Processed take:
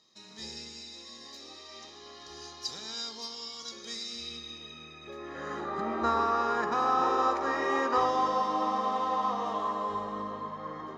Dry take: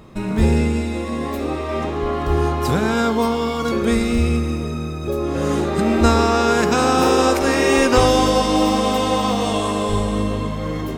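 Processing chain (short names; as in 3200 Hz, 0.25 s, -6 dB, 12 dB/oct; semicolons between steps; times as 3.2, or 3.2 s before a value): reverb RT60 0.70 s, pre-delay 3 ms, DRR 15 dB; band-pass sweep 5000 Hz -> 1200 Hz, 4.09–5.78; tilt -1.5 dB/oct; gain -5.5 dB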